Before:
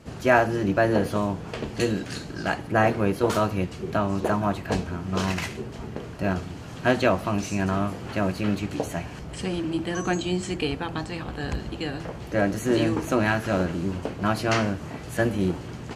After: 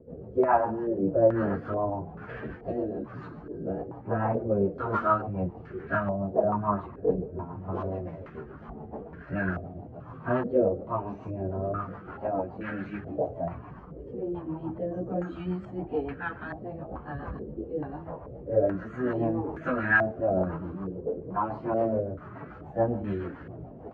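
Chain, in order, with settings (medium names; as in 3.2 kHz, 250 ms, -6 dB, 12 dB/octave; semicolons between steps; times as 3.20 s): plain phase-vocoder stretch 1.5×; rotary cabinet horn 7 Hz; step-sequenced low-pass 2.3 Hz 470–1600 Hz; trim -3 dB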